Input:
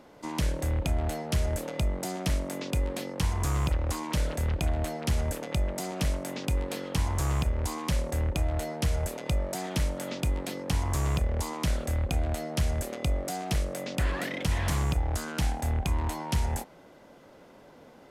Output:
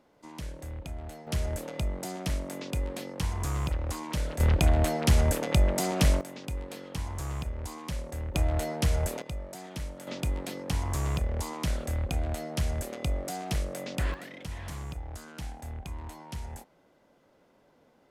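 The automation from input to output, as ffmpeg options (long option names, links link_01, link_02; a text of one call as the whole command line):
ffmpeg -i in.wav -af "asetnsamples=nb_out_samples=441:pad=0,asendcmd='1.27 volume volume -3dB;4.4 volume volume 5.5dB;6.21 volume volume -7dB;8.34 volume volume 1.5dB;9.22 volume volume -9dB;10.07 volume volume -2dB;14.14 volume volume -11dB',volume=-11dB" out.wav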